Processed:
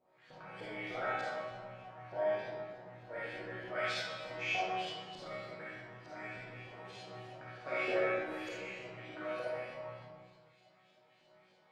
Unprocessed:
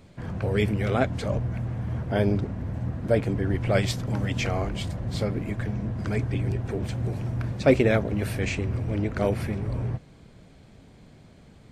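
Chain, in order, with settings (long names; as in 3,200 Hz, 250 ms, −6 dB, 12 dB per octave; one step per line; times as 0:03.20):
resonators tuned to a chord B2 major, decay 0.81 s
auto-filter band-pass saw up 3.3 Hz 590–5,100 Hz
comb and all-pass reverb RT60 1.3 s, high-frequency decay 0.7×, pre-delay 10 ms, DRR −8 dB
level +10 dB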